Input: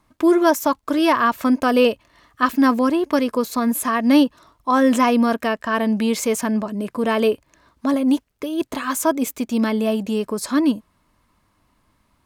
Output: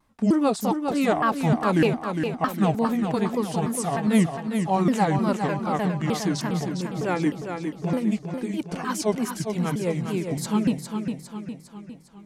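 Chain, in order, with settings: repeated pitch sweeps -8.5 st, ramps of 0.305 s; vibrato 2.5 Hz 88 cents; warbling echo 0.406 s, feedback 51%, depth 50 cents, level -6.5 dB; gain -4.5 dB

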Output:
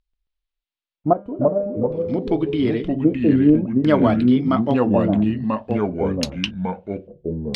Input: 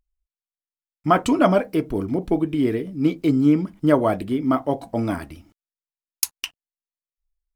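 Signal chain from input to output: 1.13–2.07 resonator 200 Hz, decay 0.85 s, harmonics all, mix 80%; LFO low-pass square 0.52 Hz 570–3900 Hz; echoes that change speed 0.135 s, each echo -3 st, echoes 2

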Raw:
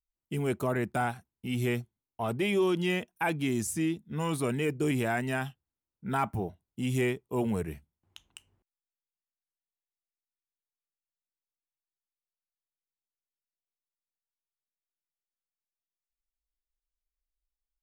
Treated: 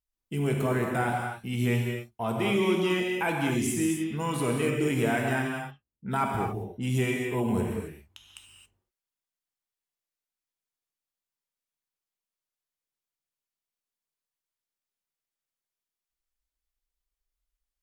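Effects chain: vibrato 0.44 Hz 6 cents; 5.42–6.97 low-pass opened by the level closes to 320 Hz, open at -30 dBFS; non-linear reverb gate 0.3 s flat, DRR -0.5 dB

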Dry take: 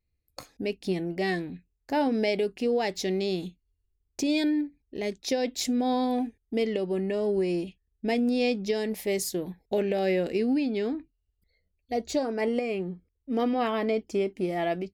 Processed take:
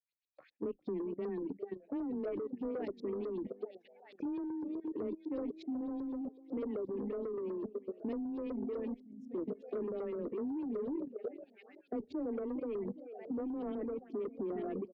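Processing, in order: median filter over 3 samples; feedback echo 0.406 s, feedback 60%, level -11.5 dB; auto-wah 290–3700 Hz, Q 2, down, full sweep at -31.5 dBFS; bell 950 Hz -12 dB 1.2 oct; limiter -30 dBFS, peak gain reduction 10 dB; LFO low-pass saw up 8 Hz 420–4500 Hz; spectral gain 9.01–9.3, 300–5300 Hz -23 dB; soft clip -31 dBFS, distortion -17 dB; frequency shift +15 Hz; level quantiser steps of 10 dB; reverb removal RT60 0.86 s; gain +4.5 dB

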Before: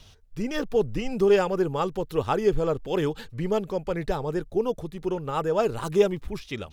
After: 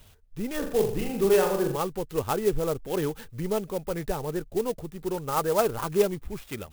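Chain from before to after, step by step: 0.58–1.77 flutter echo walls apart 7.1 m, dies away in 0.54 s; 5.13–5.87 dynamic EQ 1100 Hz, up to +5 dB, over -37 dBFS, Q 0.71; clock jitter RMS 0.05 ms; gain -2.5 dB

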